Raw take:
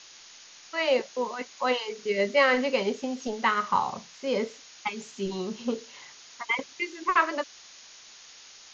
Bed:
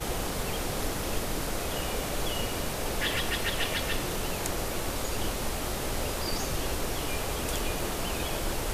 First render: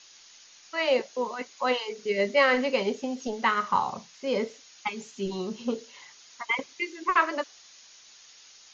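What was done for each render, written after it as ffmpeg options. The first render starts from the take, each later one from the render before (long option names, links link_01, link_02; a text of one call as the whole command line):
ffmpeg -i in.wav -af "afftdn=noise_reduction=6:noise_floor=-50" out.wav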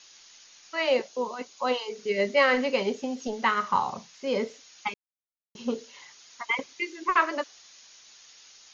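ffmpeg -i in.wav -filter_complex "[0:a]asettb=1/sr,asplit=3[link_01][link_02][link_03];[link_01]atrim=end=1.084[link_04];[link_02]atrim=start=1.08:end=1.93,asetpts=PTS-STARTPTS,afade=type=in:duration=0.004:curve=qsin,afade=type=out:start_time=0.846:duration=0.004:curve=qsin,equalizer=frequency=1900:width_type=o:width=0.7:gain=-7[link_05];[link_03]atrim=start=1.926[link_06];[link_04][link_05]acrossfade=duration=0.004:curve1=hsin:curve2=qsin[link_07];[link_07][link_06]acrossfade=duration=0.004:curve1=qsin:curve2=hsin,asplit=3[link_08][link_09][link_10];[link_08]atrim=end=4.94,asetpts=PTS-STARTPTS,afade=type=out:start_time=4.936:duration=0.004:curve=hsin[link_11];[link_09]atrim=start=4.94:end=5.55,asetpts=PTS-STARTPTS,volume=0[link_12];[link_10]atrim=start=5.55,asetpts=PTS-STARTPTS,afade=type=in:duration=0.004:curve=hsin[link_13];[link_11][link_12][link_13]concat=n=3:v=0:a=1" out.wav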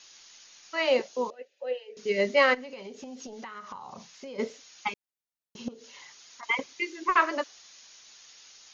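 ffmpeg -i in.wav -filter_complex "[0:a]asettb=1/sr,asplit=3[link_01][link_02][link_03];[link_01]atrim=end=1.304[link_04];[link_02]atrim=start=1.3:end=1.97,asetpts=PTS-STARTPTS,afade=type=in:duration=0.004:curve=qsin,afade=type=out:start_time=0.666:duration=0.004:curve=qsin,asplit=3[link_05][link_06][link_07];[link_05]bandpass=frequency=530:width_type=q:width=8,volume=0dB[link_08];[link_06]bandpass=frequency=1840:width_type=q:width=8,volume=-6dB[link_09];[link_07]bandpass=frequency=2480:width_type=q:width=8,volume=-9dB[link_10];[link_08][link_09][link_10]amix=inputs=3:normalize=0[link_11];[link_03]atrim=start=1.966[link_12];[link_04][link_11]acrossfade=duration=0.004:curve1=hsin:curve2=qsin[link_13];[link_13][link_12]acrossfade=duration=0.004:curve1=qsin:curve2=hsin,asplit=3[link_14][link_15][link_16];[link_14]afade=type=out:start_time=2.53:duration=0.02[link_17];[link_15]acompressor=threshold=-38dB:ratio=10:attack=3.2:release=140:knee=1:detection=peak,afade=type=in:start_time=2.53:duration=0.02,afade=type=out:start_time=4.38:duration=0.02[link_18];[link_16]afade=type=in:start_time=4.38:duration=0.02[link_19];[link_17][link_18][link_19]amix=inputs=3:normalize=0,asettb=1/sr,asplit=3[link_20][link_21][link_22];[link_20]atrim=end=5.684[link_23];[link_21]atrim=start=5.68:end=6.43,asetpts=PTS-STARTPTS,afade=type=in:duration=0.004:curve=qsin,afade=type=out:start_time=0.746:duration=0.004:curve=qsin,acompressor=threshold=-43dB:ratio=6:attack=3.2:release=140:knee=1:detection=peak[link_24];[link_22]atrim=start=6.426[link_25];[link_23][link_24]acrossfade=duration=0.004:curve1=hsin:curve2=qsin[link_26];[link_26][link_25]acrossfade=duration=0.004:curve1=qsin:curve2=hsin" out.wav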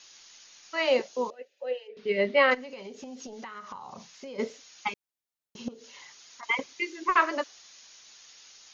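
ffmpeg -i in.wav -filter_complex "[0:a]asplit=3[link_01][link_02][link_03];[link_01]afade=type=out:start_time=1.87:duration=0.02[link_04];[link_02]lowpass=frequency=3800:width=0.5412,lowpass=frequency=3800:width=1.3066,afade=type=in:start_time=1.87:duration=0.02,afade=type=out:start_time=2.5:duration=0.02[link_05];[link_03]afade=type=in:start_time=2.5:duration=0.02[link_06];[link_04][link_05][link_06]amix=inputs=3:normalize=0" out.wav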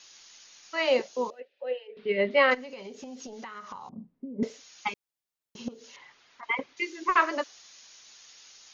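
ffmpeg -i in.wav -filter_complex "[0:a]asettb=1/sr,asplit=3[link_01][link_02][link_03];[link_01]atrim=end=1.404[link_04];[link_02]atrim=start=1.4:end=2.31,asetpts=PTS-STARTPTS,afade=type=in:duration=0.004:curve=qsin,afade=type=out:start_time=0.906:duration=0.004:curve=qsin,lowpass=frequency=3900:width=0.5412,lowpass=frequency=3900:width=1.3066[link_05];[link_03]atrim=start=2.306[link_06];[link_04][link_05]acrossfade=duration=0.004:curve1=hsin:curve2=qsin[link_07];[link_07][link_06]acrossfade=duration=0.004:curve1=qsin:curve2=hsin,asettb=1/sr,asplit=3[link_08][link_09][link_10];[link_08]atrim=end=3.894[link_11];[link_09]atrim=start=3.89:end=4.43,asetpts=PTS-STARTPTS,afade=type=in:duration=0.004:curve=qsin,afade=type=out:start_time=0.536:duration=0.004:curve=qsin,lowpass=frequency=250:width_type=q:width=3.1[link_12];[link_10]atrim=start=4.426[link_13];[link_11][link_12]acrossfade=duration=0.004:curve1=hsin:curve2=qsin[link_14];[link_14][link_13]acrossfade=duration=0.004:curve1=qsin:curve2=hsin,asettb=1/sr,asplit=3[link_15][link_16][link_17];[link_15]atrim=end=5.964[link_18];[link_16]atrim=start=5.96:end=6.77,asetpts=PTS-STARTPTS,afade=type=in:duration=0.004:curve=qsin,afade=type=out:start_time=0.806:duration=0.004:curve=qsin,lowpass=2500[link_19];[link_17]atrim=start=6.766[link_20];[link_18][link_19]acrossfade=duration=0.004:curve1=hsin:curve2=qsin[link_21];[link_21][link_20]acrossfade=duration=0.004:curve1=qsin:curve2=hsin" out.wav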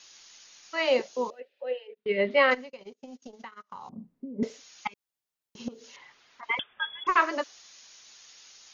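ffmpeg -i in.wav -filter_complex "[0:a]asplit=3[link_01][link_02][link_03];[link_01]afade=type=out:start_time=1.93:duration=0.02[link_04];[link_02]agate=range=-35dB:threshold=-42dB:ratio=16:release=100:detection=peak,afade=type=in:start_time=1.93:duration=0.02,afade=type=out:start_time=3.73:duration=0.02[link_05];[link_03]afade=type=in:start_time=3.73:duration=0.02[link_06];[link_04][link_05][link_06]amix=inputs=3:normalize=0,asettb=1/sr,asplit=3[link_07][link_08][link_09];[link_07]atrim=end=4.874[link_10];[link_08]atrim=start=4.87:end=5.6,asetpts=PTS-STARTPTS,afade=type=in:duration=0.004:curve=qsin,afade=type=out:start_time=0.726:duration=0.004:curve=qsin,acompressor=threshold=-44dB:ratio=10:attack=3.2:release=140:knee=1:detection=peak[link_11];[link_09]atrim=start=5.596[link_12];[link_10][link_11]acrossfade=duration=0.004:curve1=hsin:curve2=qsin[link_13];[link_13][link_12]acrossfade=duration=0.004:curve1=qsin:curve2=hsin,asettb=1/sr,asplit=3[link_14][link_15][link_16];[link_14]atrim=end=6.594[link_17];[link_15]atrim=start=6.59:end=7.07,asetpts=PTS-STARTPTS,afade=type=in:duration=0.004:curve=qsin,afade=type=out:start_time=0.476:duration=0.004:curve=qsin,lowpass=frequency=3100:width_type=q:width=0.5098,lowpass=frequency=3100:width_type=q:width=0.6013,lowpass=frequency=3100:width_type=q:width=0.9,lowpass=frequency=3100:width_type=q:width=2.563,afreqshift=-3700[link_18];[link_16]atrim=start=7.066[link_19];[link_17][link_18]acrossfade=duration=0.004:curve1=hsin:curve2=qsin[link_20];[link_20][link_19]acrossfade=duration=0.004:curve1=qsin:curve2=hsin" out.wav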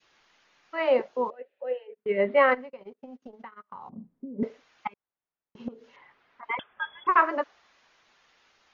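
ffmpeg -i in.wav -af "lowpass=1800,adynamicequalizer=threshold=0.0178:dfrequency=1000:dqfactor=0.72:tfrequency=1000:tqfactor=0.72:attack=5:release=100:ratio=0.375:range=2:mode=boostabove:tftype=bell" out.wav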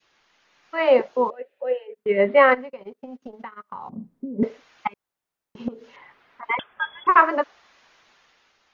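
ffmpeg -i in.wav -af "dynaudnorm=framelen=100:gausssize=13:maxgain=7dB" out.wav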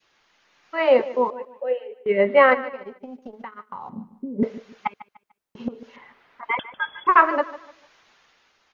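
ffmpeg -i in.wav -af "aecho=1:1:148|296|444:0.15|0.0479|0.0153" out.wav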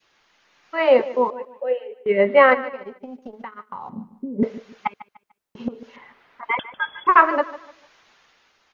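ffmpeg -i in.wav -af "volume=1.5dB" out.wav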